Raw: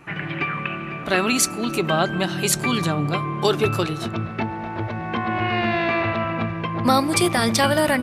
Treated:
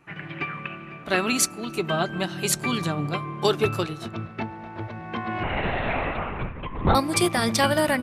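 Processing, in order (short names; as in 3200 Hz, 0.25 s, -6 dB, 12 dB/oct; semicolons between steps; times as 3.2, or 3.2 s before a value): 1.6–2.08 notch comb 270 Hz; 5.43–6.95 LPC vocoder at 8 kHz whisper; upward expander 1.5:1, over -34 dBFS; gain -1 dB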